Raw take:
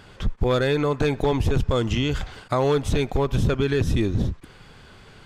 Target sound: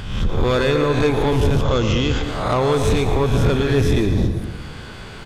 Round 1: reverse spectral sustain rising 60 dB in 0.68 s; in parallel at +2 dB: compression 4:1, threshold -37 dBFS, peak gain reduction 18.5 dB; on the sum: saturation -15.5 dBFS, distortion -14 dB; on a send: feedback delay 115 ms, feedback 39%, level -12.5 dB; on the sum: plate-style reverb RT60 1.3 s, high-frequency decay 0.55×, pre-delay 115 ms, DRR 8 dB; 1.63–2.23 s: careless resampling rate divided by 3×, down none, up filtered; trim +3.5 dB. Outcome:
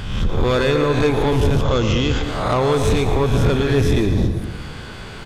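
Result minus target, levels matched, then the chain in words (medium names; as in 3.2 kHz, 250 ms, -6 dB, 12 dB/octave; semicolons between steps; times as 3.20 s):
compression: peak gain reduction -6 dB
reverse spectral sustain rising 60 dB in 0.68 s; in parallel at +2 dB: compression 4:1, threshold -45 dBFS, peak gain reduction 24.5 dB; on the sum: saturation -15.5 dBFS, distortion -15 dB; on a send: feedback delay 115 ms, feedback 39%, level -12.5 dB; on the sum: plate-style reverb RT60 1.3 s, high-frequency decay 0.55×, pre-delay 115 ms, DRR 8 dB; 1.63–2.23 s: careless resampling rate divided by 3×, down none, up filtered; trim +3.5 dB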